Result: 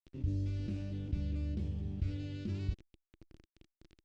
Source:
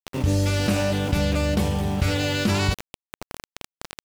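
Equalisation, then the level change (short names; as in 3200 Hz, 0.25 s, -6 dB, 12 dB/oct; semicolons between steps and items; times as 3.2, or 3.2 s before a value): air absorption 140 m; passive tone stack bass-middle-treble 10-0-1; bell 330 Hz +10.5 dB 0.49 oct; -2.5 dB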